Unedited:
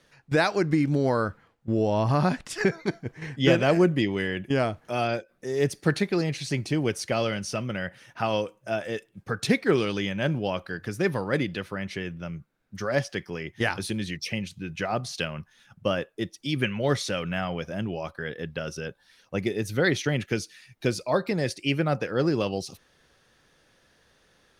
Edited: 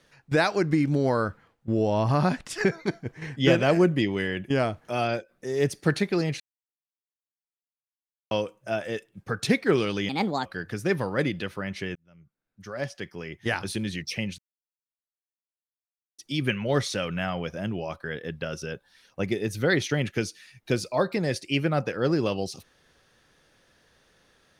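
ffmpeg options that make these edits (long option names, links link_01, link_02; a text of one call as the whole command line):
ffmpeg -i in.wav -filter_complex "[0:a]asplit=8[link_01][link_02][link_03][link_04][link_05][link_06][link_07][link_08];[link_01]atrim=end=6.4,asetpts=PTS-STARTPTS,afade=type=out:start_time=6.396:duration=0.004:curve=hsin[link_09];[link_02]atrim=start=6.4:end=8.31,asetpts=PTS-STARTPTS,volume=0[link_10];[link_03]atrim=start=8.31:end=10.094,asetpts=PTS-STARTPTS,afade=type=in:duration=0.004:curve=hsin[link_11];[link_04]atrim=start=10.09:end=10.6,asetpts=PTS-STARTPTS,asetrate=61740,aresample=44100,atrim=end_sample=16065,asetpts=PTS-STARTPTS[link_12];[link_05]atrim=start=10.596:end=12.1,asetpts=PTS-STARTPTS,afade=type=out:start_time=1.5:duration=0.004:curve=hsin[link_13];[link_06]atrim=start=12.1:end=14.53,asetpts=PTS-STARTPTS,afade=type=in:duration=1.84,afade=type=out:start_time=2.426:duration=0.004:curve=hsin[link_14];[link_07]atrim=start=14.53:end=16.33,asetpts=PTS-STARTPTS,volume=0[link_15];[link_08]atrim=start=16.33,asetpts=PTS-STARTPTS,afade=type=in:duration=0.004:curve=hsin[link_16];[link_09][link_10][link_11]concat=n=3:v=0:a=1[link_17];[link_17][link_12]acrossfade=duration=0.004:curve1=hsin:curve2=hsin[link_18];[link_13][link_14][link_15][link_16]concat=n=4:v=0:a=1[link_19];[link_18][link_19]acrossfade=duration=0.004:curve1=hsin:curve2=hsin" out.wav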